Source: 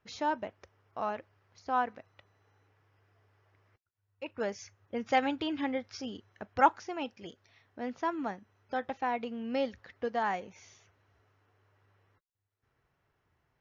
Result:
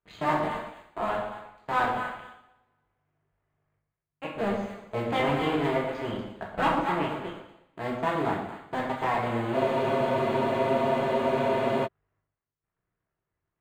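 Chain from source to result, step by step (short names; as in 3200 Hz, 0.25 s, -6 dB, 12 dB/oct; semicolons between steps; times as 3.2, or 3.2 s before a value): cycle switcher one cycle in 2, muted; on a send: echo with dull and thin repeats by turns 0.119 s, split 810 Hz, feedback 54%, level -5.5 dB; on the sum: sample leveller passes 3; running mean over 8 samples; in parallel at -5.5 dB: one-sided clip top -20.5 dBFS; on the sum: two-slope reverb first 0.69 s, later 1.8 s, from -28 dB, DRR -3 dB; spectral freeze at 9.57, 2.29 s; gain -9 dB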